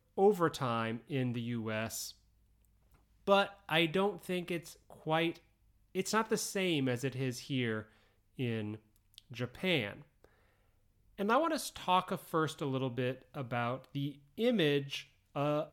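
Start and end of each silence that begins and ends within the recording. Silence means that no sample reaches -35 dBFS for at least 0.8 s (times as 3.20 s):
2.06–3.27 s
9.91–11.20 s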